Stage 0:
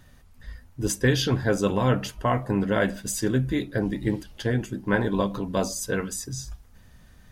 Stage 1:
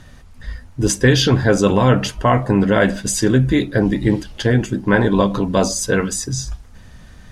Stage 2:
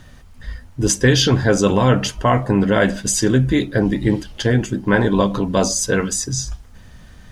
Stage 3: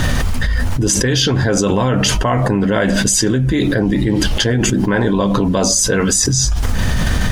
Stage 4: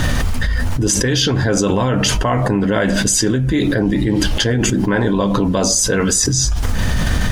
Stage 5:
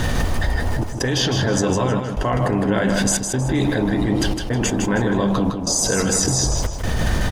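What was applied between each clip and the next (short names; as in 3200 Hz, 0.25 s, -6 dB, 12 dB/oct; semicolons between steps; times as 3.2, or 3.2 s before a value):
in parallel at -1.5 dB: limiter -18.5 dBFS, peak gain reduction 9.5 dB; on the sum: LPF 9000 Hz 12 dB/oct; gain +5.5 dB
dynamic EQ 6200 Hz, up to +4 dB, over -38 dBFS, Q 1.6; small resonant body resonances 3100 Hz, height 7 dB; bit-crush 11-bit; gain -1 dB
fast leveller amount 100%; gain -4.5 dB
FDN reverb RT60 0.67 s, high-frequency decay 0.4×, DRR 18.5 dB; gain -1 dB
band noise 120–880 Hz -28 dBFS; step gate "xxxxxxxxxx..xx" 180 bpm -24 dB; feedback echo 0.158 s, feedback 29%, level -6 dB; gain -4.5 dB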